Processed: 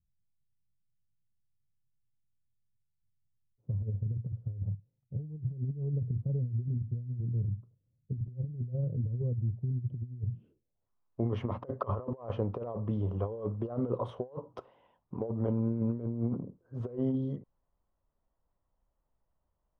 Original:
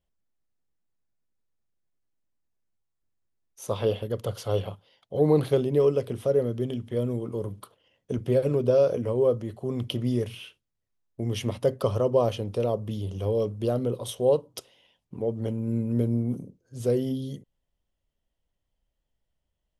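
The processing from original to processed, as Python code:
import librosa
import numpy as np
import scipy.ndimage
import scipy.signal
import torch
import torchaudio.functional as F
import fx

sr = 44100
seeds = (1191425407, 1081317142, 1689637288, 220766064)

y = fx.filter_sweep_lowpass(x, sr, from_hz=130.0, to_hz=1100.0, start_s=10.28, end_s=10.89, q=2.7)
y = fx.over_compress(y, sr, threshold_db=-28.0, ratio=-0.5)
y = y * librosa.db_to_amplitude(-4.0)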